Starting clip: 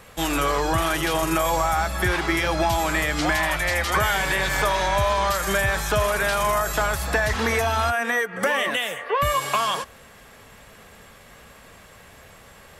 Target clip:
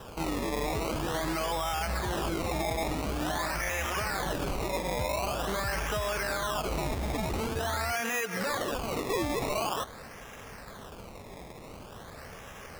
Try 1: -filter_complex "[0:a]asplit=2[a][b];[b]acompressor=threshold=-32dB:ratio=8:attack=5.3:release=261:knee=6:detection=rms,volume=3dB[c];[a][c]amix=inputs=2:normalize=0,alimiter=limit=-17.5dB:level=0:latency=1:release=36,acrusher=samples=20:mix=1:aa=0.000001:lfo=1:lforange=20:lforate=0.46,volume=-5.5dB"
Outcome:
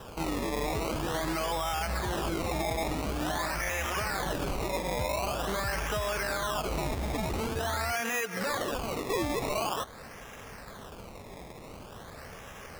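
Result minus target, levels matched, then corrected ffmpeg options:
compressor: peak gain reduction +7.5 dB
-filter_complex "[0:a]asplit=2[a][b];[b]acompressor=threshold=-23.5dB:ratio=8:attack=5.3:release=261:knee=6:detection=rms,volume=3dB[c];[a][c]amix=inputs=2:normalize=0,alimiter=limit=-17.5dB:level=0:latency=1:release=36,acrusher=samples=20:mix=1:aa=0.000001:lfo=1:lforange=20:lforate=0.46,volume=-5.5dB"

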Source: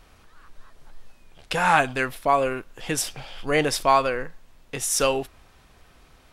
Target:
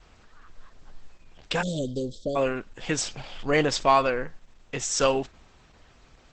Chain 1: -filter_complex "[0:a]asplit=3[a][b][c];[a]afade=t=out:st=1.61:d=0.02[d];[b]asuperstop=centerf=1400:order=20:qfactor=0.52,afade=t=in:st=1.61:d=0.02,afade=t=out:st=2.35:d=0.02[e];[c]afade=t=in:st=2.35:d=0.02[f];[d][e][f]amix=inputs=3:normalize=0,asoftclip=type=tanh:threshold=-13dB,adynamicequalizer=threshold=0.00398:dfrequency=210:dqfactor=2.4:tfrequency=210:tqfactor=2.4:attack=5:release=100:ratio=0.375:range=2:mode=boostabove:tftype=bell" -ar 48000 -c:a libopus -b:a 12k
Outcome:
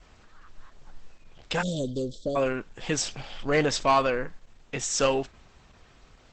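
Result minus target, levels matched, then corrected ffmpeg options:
soft clip: distortion +11 dB
-filter_complex "[0:a]asplit=3[a][b][c];[a]afade=t=out:st=1.61:d=0.02[d];[b]asuperstop=centerf=1400:order=20:qfactor=0.52,afade=t=in:st=1.61:d=0.02,afade=t=out:st=2.35:d=0.02[e];[c]afade=t=in:st=2.35:d=0.02[f];[d][e][f]amix=inputs=3:normalize=0,asoftclip=type=tanh:threshold=-5dB,adynamicequalizer=threshold=0.00398:dfrequency=210:dqfactor=2.4:tfrequency=210:tqfactor=2.4:attack=5:release=100:ratio=0.375:range=2:mode=boostabove:tftype=bell" -ar 48000 -c:a libopus -b:a 12k

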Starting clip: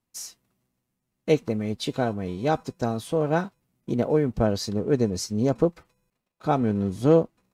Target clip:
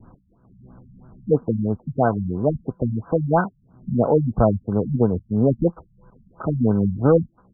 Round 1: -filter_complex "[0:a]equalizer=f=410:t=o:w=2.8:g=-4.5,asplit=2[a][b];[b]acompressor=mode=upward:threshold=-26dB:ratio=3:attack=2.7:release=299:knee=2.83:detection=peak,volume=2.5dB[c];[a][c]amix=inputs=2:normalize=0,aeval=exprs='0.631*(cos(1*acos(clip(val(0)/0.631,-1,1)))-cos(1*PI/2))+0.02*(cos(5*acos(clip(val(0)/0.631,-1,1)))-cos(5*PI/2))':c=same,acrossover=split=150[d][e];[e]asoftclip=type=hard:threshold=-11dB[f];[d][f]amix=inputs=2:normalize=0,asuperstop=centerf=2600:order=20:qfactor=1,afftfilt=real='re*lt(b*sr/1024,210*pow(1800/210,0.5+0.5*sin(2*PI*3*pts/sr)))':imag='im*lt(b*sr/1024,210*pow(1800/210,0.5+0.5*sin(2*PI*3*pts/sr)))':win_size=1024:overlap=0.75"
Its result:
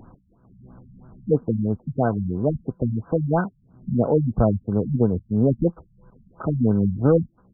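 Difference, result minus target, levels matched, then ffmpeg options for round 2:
1000 Hz band -3.5 dB
-filter_complex "[0:a]equalizer=f=410:t=o:w=2.8:g=-4.5,asplit=2[a][b];[b]acompressor=mode=upward:threshold=-26dB:ratio=3:attack=2.7:release=299:knee=2.83:detection=peak,volume=2.5dB[c];[a][c]amix=inputs=2:normalize=0,aeval=exprs='0.631*(cos(1*acos(clip(val(0)/0.631,-1,1)))-cos(1*PI/2))+0.02*(cos(5*acos(clip(val(0)/0.631,-1,1)))-cos(5*PI/2))':c=same,acrossover=split=150[d][e];[e]asoftclip=type=hard:threshold=-11dB[f];[d][f]amix=inputs=2:normalize=0,asuperstop=centerf=2600:order=20:qfactor=1,adynamicequalizer=threshold=0.0224:dfrequency=980:dqfactor=0.84:tfrequency=980:tqfactor=0.84:attack=5:release=100:ratio=0.375:range=3:mode=boostabove:tftype=bell,afftfilt=real='re*lt(b*sr/1024,210*pow(1800/210,0.5+0.5*sin(2*PI*3*pts/sr)))':imag='im*lt(b*sr/1024,210*pow(1800/210,0.5+0.5*sin(2*PI*3*pts/sr)))':win_size=1024:overlap=0.75"

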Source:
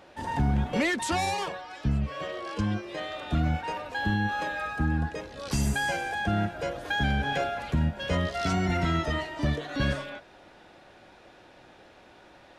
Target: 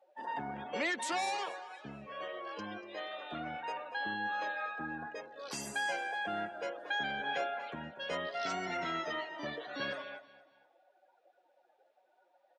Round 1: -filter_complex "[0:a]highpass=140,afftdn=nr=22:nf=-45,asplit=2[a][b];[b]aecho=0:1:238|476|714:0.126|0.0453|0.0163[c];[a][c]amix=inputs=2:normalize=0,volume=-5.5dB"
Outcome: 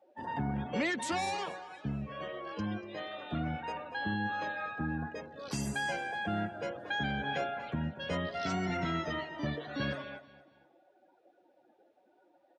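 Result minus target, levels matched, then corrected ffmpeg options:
125 Hz band +13.5 dB
-filter_complex "[0:a]highpass=420,afftdn=nr=22:nf=-45,asplit=2[a][b];[b]aecho=0:1:238|476|714:0.126|0.0453|0.0163[c];[a][c]amix=inputs=2:normalize=0,volume=-5.5dB"

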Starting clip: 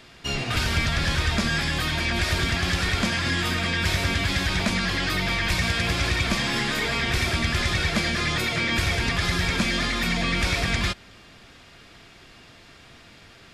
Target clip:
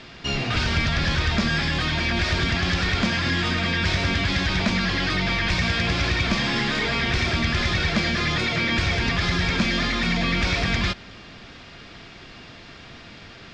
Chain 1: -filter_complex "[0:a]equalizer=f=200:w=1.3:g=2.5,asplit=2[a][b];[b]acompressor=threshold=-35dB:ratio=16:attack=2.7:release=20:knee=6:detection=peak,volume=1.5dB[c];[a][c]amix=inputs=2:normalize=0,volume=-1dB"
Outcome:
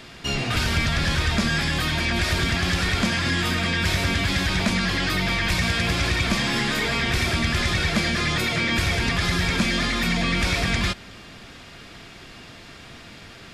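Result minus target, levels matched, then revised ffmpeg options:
8000 Hz band +5.5 dB
-filter_complex "[0:a]lowpass=f=6k:w=0.5412,lowpass=f=6k:w=1.3066,equalizer=f=200:w=1.3:g=2.5,asplit=2[a][b];[b]acompressor=threshold=-35dB:ratio=16:attack=2.7:release=20:knee=6:detection=peak,volume=1.5dB[c];[a][c]amix=inputs=2:normalize=0,volume=-1dB"

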